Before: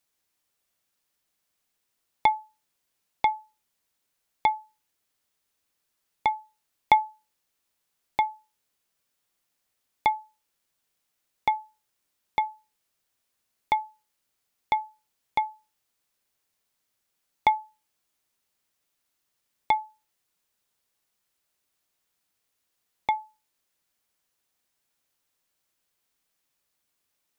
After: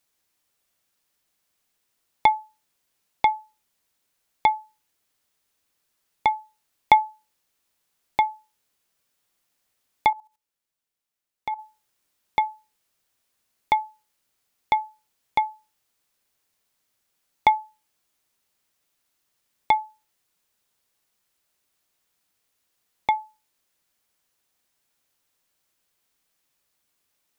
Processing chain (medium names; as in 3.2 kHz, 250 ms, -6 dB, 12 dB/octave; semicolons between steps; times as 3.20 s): 10.10–11.59 s: level held to a coarse grid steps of 15 dB; trim +3.5 dB